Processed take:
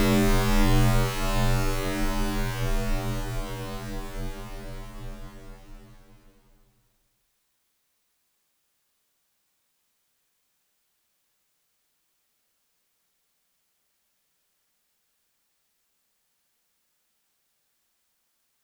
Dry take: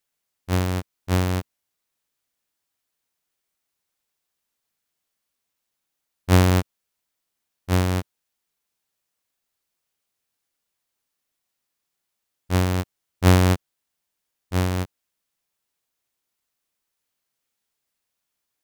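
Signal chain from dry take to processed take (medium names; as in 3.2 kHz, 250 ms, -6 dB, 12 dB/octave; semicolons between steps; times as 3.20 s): frequency shift -64 Hz; Paulstretch 15×, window 1.00 s, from 1.41 s; trim +7 dB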